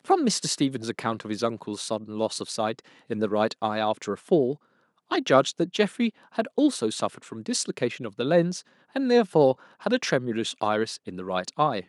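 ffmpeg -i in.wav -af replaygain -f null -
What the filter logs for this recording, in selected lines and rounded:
track_gain = +4.1 dB
track_peak = 0.412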